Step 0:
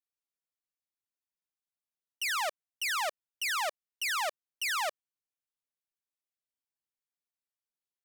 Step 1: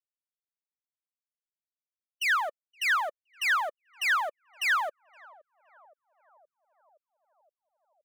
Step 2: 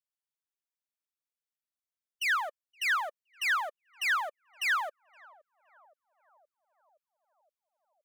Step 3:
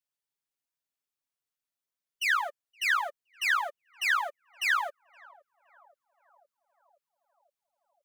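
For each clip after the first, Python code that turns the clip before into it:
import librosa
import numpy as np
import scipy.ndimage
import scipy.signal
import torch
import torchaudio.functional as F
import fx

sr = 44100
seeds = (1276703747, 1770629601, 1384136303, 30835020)

y1 = fx.bin_expand(x, sr, power=3.0)
y1 = fx.peak_eq(y1, sr, hz=1600.0, db=13.0, octaves=1.5)
y1 = fx.echo_banded(y1, sr, ms=519, feedback_pct=73, hz=550.0, wet_db=-22.0)
y2 = fx.low_shelf(y1, sr, hz=410.0, db=-10.0)
y2 = y2 * 10.0 ** (-2.0 / 20.0)
y3 = y2 + 0.7 * np.pad(y2, (int(7.2 * sr / 1000.0), 0))[:len(y2)]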